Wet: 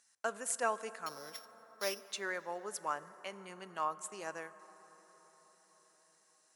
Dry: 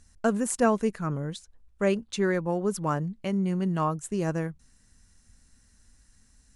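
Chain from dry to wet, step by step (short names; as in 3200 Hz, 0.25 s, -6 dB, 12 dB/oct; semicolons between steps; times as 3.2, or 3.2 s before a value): 1.06–2.08 sample sorter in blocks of 8 samples; HPF 790 Hz 12 dB/oct; reverb RT60 5.6 s, pre-delay 13 ms, DRR 15 dB; gain -5 dB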